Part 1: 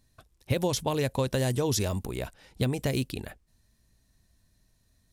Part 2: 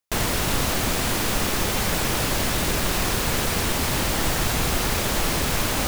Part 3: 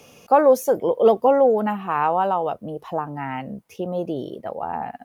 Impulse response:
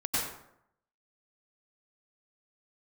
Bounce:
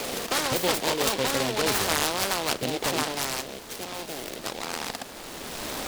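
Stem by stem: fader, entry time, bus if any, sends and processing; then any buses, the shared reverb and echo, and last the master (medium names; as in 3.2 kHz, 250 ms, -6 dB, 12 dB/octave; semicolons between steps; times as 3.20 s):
0.0 dB, 0.00 s, no send, three bands expanded up and down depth 100%
-6.0 dB, 0.00 s, no send, auto duck -10 dB, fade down 0.30 s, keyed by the third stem
3.10 s -2 dB -> 3.43 s -8.5 dB, 0.00 s, no send, spectrum-flattening compressor 10:1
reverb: none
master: three-band isolator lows -15 dB, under 220 Hz, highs -21 dB, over 5 kHz; delay time shaken by noise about 2.9 kHz, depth 0.14 ms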